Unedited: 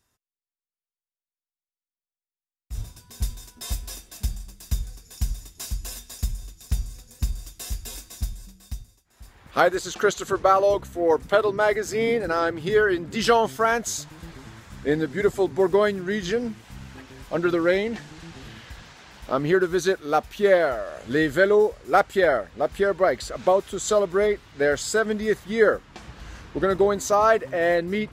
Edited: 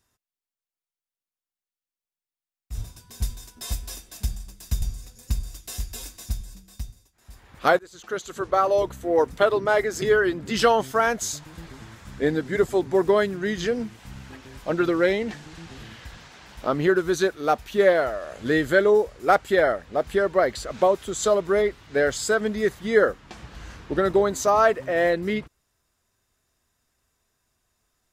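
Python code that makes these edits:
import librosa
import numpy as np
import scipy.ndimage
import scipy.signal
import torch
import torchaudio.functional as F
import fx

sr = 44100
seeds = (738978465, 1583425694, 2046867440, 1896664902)

y = fx.edit(x, sr, fx.cut(start_s=4.82, length_s=1.92),
    fx.fade_in_from(start_s=9.71, length_s=1.13, floor_db=-23.0),
    fx.cut(start_s=11.94, length_s=0.73), tone=tone)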